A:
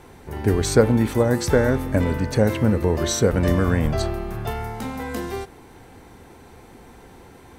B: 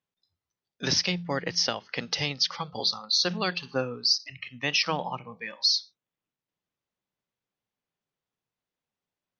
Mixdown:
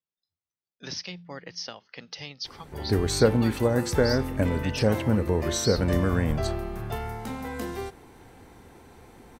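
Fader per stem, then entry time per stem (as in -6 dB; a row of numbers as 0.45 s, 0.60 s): -4.5 dB, -10.5 dB; 2.45 s, 0.00 s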